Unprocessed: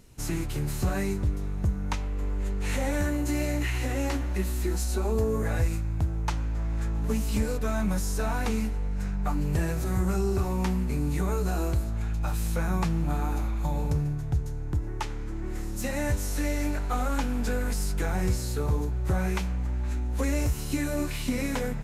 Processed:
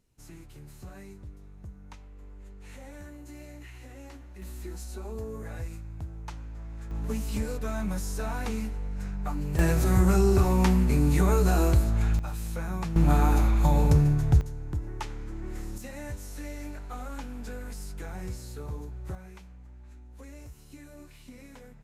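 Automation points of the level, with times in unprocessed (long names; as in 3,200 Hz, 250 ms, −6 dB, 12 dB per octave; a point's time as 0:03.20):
−17.5 dB
from 0:04.42 −11 dB
from 0:06.91 −4 dB
from 0:09.59 +5 dB
from 0:12.19 −5.5 dB
from 0:12.96 +6.5 dB
from 0:14.41 −3.5 dB
from 0:15.78 −10.5 dB
from 0:19.15 −19.5 dB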